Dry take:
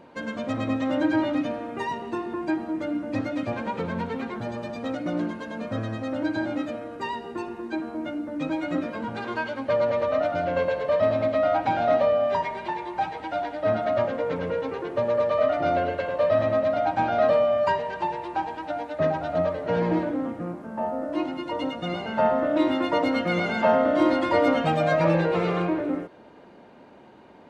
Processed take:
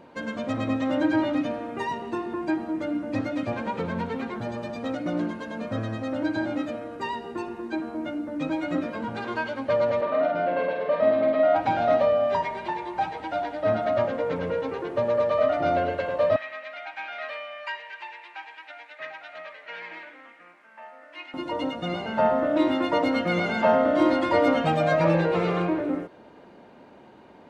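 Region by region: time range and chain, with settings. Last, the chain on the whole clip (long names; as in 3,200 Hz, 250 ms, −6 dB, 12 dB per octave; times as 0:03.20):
0:10.01–0:11.56: high-pass filter 160 Hz 24 dB per octave + high-frequency loss of the air 220 metres + double-tracking delay 48 ms −4 dB
0:16.36–0:21.34: high-pass with resonance 2,200 Hz, resonance Q 2.7 + spectral tilt −3.5 dB per octave
whole clip: no processing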